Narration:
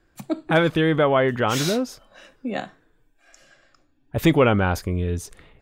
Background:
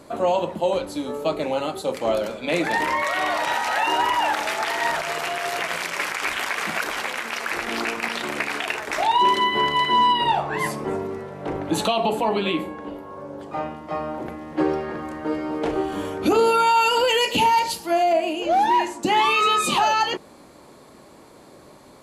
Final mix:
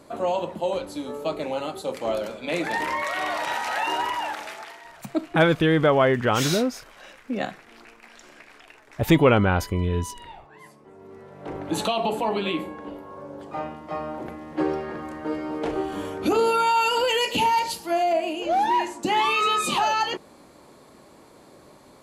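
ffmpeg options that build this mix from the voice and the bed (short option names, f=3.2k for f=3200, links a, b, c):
-filter_complex "[0:a]adelay=4850,volume=0dB[a];[1:a]volume=16dB,afade=t=out:st=3.89:d=0.94:silence=0.112202,afade=t=in:st=10.95:d=0.84:silence=0.1[b];[a][b]amix=inputs=2:normalize=0"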